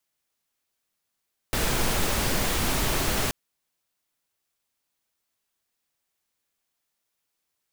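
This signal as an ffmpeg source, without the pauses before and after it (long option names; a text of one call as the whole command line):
ffmpeg -f lavfi -i "anoisesrc=color=pink:amplitude=0.305:duration=1.78:sample_rate=44100:seed=1" out.wav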